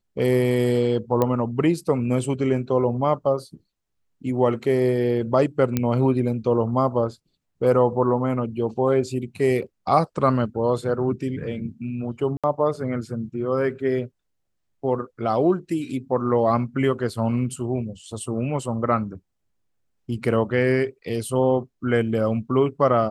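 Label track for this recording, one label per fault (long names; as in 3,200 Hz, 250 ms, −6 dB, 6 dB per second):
1.220000	1.220000	click −9 dBFS
5.770000	5.770000	click −8 dBFS
12.370000	12.440000	drop-out 66 ms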